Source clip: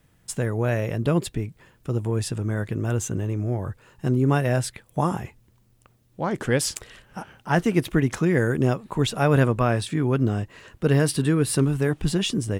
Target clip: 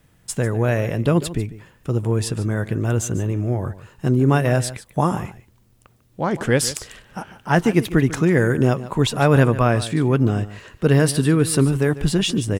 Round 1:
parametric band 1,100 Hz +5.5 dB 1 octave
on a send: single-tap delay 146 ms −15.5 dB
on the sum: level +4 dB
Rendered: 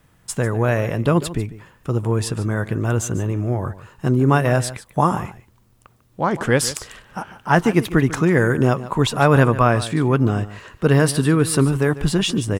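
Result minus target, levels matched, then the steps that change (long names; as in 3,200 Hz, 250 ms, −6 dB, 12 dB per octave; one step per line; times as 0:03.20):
1,000 Hz band +3.0 dB
remove: parametric band 1,100 Hz +5.5 dB 1 octave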